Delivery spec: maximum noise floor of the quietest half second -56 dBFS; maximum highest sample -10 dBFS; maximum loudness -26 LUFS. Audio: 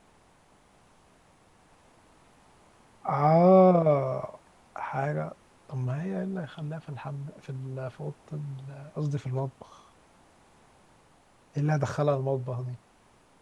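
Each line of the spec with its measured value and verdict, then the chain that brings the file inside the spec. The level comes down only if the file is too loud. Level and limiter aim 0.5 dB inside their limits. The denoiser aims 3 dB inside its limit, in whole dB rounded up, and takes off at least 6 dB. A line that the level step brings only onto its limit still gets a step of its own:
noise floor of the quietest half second -61 dBFS: OK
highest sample -9.5 dBFS: fail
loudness -28.0 LUFS: OK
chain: limiter -10.5 dBFS

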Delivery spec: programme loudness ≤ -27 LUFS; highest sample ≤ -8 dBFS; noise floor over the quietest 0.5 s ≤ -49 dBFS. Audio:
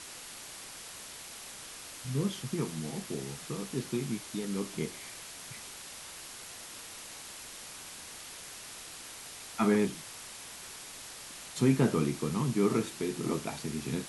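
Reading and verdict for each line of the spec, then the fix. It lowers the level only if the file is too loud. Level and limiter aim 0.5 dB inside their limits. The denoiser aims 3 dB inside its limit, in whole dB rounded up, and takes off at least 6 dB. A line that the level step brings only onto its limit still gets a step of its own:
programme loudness -35.0 LUFS: OK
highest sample -13.5 dBFS: OK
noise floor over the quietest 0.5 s -46 dBFS: fail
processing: denoiser 6 dB, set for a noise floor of -46 dBFS

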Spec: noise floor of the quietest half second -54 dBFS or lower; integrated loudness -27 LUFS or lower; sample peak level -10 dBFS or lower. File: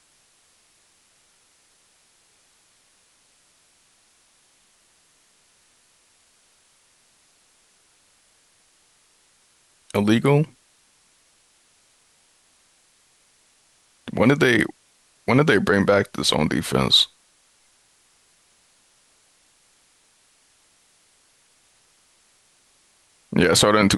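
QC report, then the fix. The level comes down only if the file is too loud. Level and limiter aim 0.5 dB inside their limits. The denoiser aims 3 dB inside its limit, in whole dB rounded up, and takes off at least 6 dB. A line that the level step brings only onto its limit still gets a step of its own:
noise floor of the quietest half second -61 dBFS: OK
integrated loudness -19.0 LUFS: fail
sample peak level -5.5 dBFS: fail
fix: gain -8.5 dB

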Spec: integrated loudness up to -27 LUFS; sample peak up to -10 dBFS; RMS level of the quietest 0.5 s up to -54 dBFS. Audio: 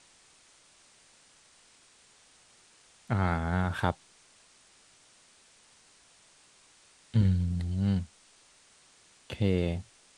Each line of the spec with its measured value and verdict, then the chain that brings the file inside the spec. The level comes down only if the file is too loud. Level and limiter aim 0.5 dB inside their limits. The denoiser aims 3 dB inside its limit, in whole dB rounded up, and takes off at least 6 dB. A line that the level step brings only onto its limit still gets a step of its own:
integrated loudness -30.0 LUFS: OK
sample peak -10.5 dBFS: OK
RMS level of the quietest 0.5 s -61 dBFS: OK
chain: none

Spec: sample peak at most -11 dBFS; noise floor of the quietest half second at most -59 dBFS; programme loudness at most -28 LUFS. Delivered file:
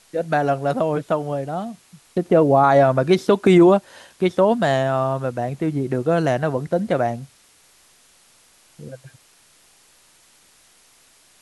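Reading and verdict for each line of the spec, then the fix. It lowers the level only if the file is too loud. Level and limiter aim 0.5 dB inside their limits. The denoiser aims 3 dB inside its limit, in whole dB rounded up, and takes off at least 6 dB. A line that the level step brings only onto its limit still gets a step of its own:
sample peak -4.5 dBFS: fail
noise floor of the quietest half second -55 dBFS: fail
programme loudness -19.0 LUFS: fail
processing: gain -9.5 dB

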